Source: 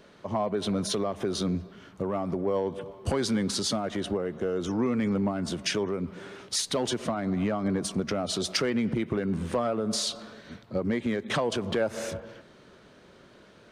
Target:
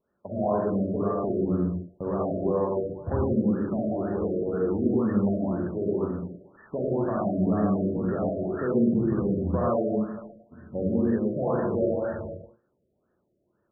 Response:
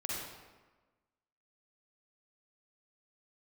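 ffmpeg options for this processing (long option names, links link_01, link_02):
-filter_complex "[0:a]lowpass=2400,agate=range=-22dB:threshold=-41dB:ratio=16:detection=peak[link_01];[1:a]atrim=start_sample=2205,afade=type=out:start_time=0.34:duration=0.01,atrim=end_sample=15435[link_02];[link_01][link_02]afir=irnorm=-1:irlink=0,afftfilt=real='re*lt(b*sr/1024,660*pow(1900/660,0.5+0.5*sin(2*PI*2*pts/sr)))':imag='im*lt(b*sr/1024,660*pow(1900/660,0.5+0.5*sin(2*PI*2*pts/sr)))':win_size=1024:overlap=0.75"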